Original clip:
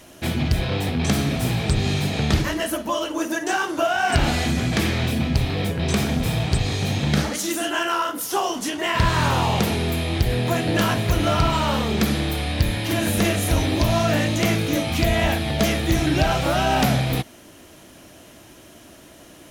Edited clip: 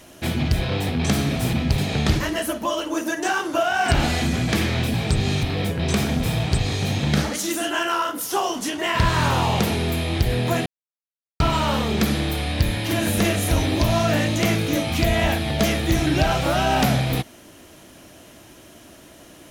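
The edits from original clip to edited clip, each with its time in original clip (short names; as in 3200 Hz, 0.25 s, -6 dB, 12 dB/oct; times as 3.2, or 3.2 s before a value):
1.53–2.02 swap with 5.18–5.43
10.66–11.4 mute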